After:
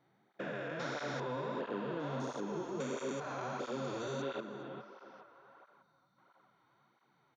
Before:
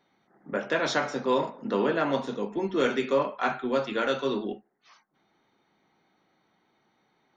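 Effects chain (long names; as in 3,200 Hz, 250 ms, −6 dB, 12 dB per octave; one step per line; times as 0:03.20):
spectrum averaged block by block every 400 ms
parametric band 130 Hz +10.5 dB 0.32 octaves
single-tap delay 287 ms −23 dB
downward compressor, threshold −31 dBFS, peak gain reduction 7 dB
0:02.20–0:04.22: high shelf with overshoot 4,400 Hz +12.5 dB, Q 1.5
feedback echo with a band-pass in the loop 414 ms, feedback 65%, band-pass 1,100 Hz, level −7.5 dB
0:05.82–0:06.18: gain on a spectral selection 310–3,500 Hz −9 dB
through-zero flanger with one copy inverted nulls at 1.5 Hz, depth 5.4 ms
level −1.5 dB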